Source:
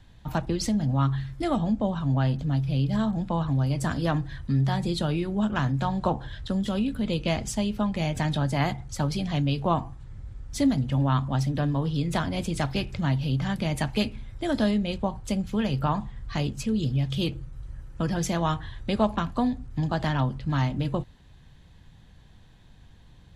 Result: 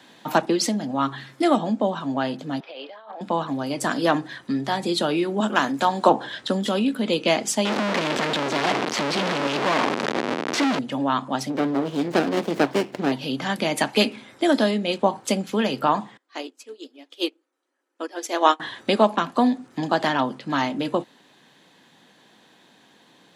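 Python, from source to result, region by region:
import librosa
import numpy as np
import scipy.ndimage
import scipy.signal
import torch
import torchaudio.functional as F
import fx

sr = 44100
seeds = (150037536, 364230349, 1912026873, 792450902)

y = fx.chain(x, sr, fx.highpass(hz=520.0, slope=24),
    fx.air_absorb(metres=320.0),
    fx.over_compress(threshold_db=-46.0, ratio=-1.0), at=(2.6, 3.21))
y = fx.chain(y, sr, fx.highpass(hz=180.0, slope=12),
    fx.high_shelf(hz=7900.0, db=10.5), at=(5.4, 6.09))
y = fx.chain(y, sr, fx.clip_1bit(),
    fx.lowpass(hz=3900.0, slope=12), at=(7.65, 10.79))
y = fx.chain(y, sr, fx.lowpass(hz=5200.0, slope=12),
    fx.running_max(window=33), at=(11.5, 13.12))
y = fx.chain(y, sr, fx.brickwall_highpass(low_hz=250.0),
    fx.upward_expand(threshold_db=-41.0, expansion=2.5), at=(16.17, 18.6))
y = fx.rider(y, sr, range_db=10, speed_s=0.5)
y = scipy.signal.sosfilt(scipy.signal.butter(4, 250.0, 'highpass', fs=sr, output='sos'), y)
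y = y * librosa.db_to_amplitude(8.5)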